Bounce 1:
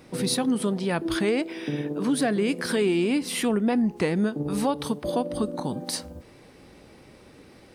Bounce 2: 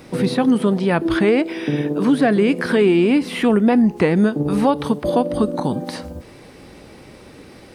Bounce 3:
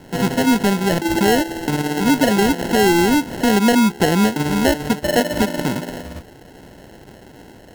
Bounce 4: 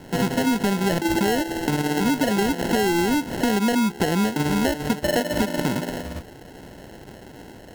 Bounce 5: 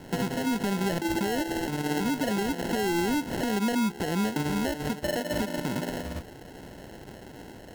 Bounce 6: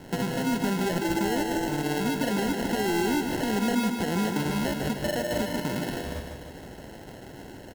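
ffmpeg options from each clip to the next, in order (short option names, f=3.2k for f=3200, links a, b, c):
-filter_complex "[0:a]acrossover=split=3000[a][b];[b]acompressor=threshold=-49dB:ratio=4:attack=1:release=60[c];[a][c]amix=inputs=2:normalize=0,volume=8.5dB"
-af "acrusher=samples=37:mix=1:aa=0.000001"
-af "acompressor=threshold=-18dB:ratio=6"
-af "alimiter=limit=-18dB:level=0:latency=1:release=220,volume=-2.5dB"
-af "aecho=1:1:152|304|456|608|760|912|1064:0.501|0.266|0.141|0.0746|0.0395|0.021|0.0111"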